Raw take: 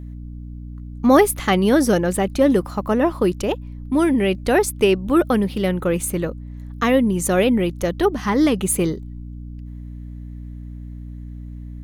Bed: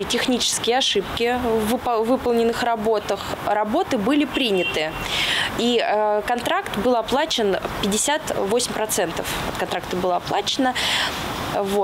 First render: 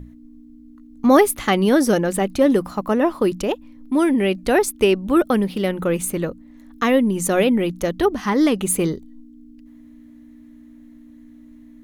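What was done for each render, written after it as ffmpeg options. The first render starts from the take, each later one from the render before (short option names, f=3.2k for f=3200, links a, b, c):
-af "bandreject=f=60:t=h:w=6,bandreject=f=120:t=h:w=6,bandreject=f=180:t=h:w=6"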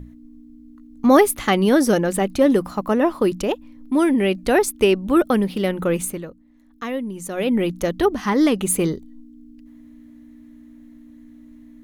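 -filter_complex "[0:a]asplit=3[a][b][c];[a]atrim=end=6.23,asetpts=PTS-STARTPTS,afade=t=out:st=6.01:d=0.22:silence=0.316228[d];[b]atrim=start=6.23:end=7.36,asetpts=PTS-STARTPTS,volume=-10dB[e];[c]atrim=start=7.36,asetpts=PTS-STARTPTS,afade=t=in:d=0.22:silence=0.316228[f];[d][e][f]concat=n=3:v=0:a=1"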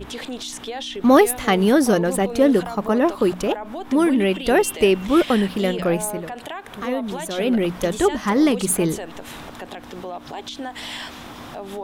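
-filter_complex "[1:a]volume=-11.5dB[a];[0:a][a]amix=inputs=2:normalize=0"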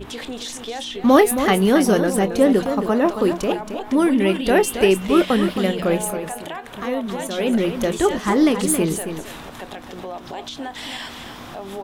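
-filter_complex "[0:a]asplit=2[a][b];[b]adelay=26,volume=-14dB[c];[a][c]amix=inputs=2:normalize=0,asplit=2[d][e];[e]aecho=0:1:272:0.355[f];[d][f]amix=inputs=2:normalize=0"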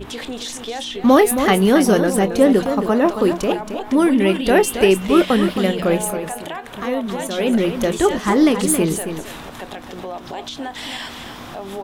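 -af "volume=2dB,alimiter=limit=-2dB:level=0:latency=1"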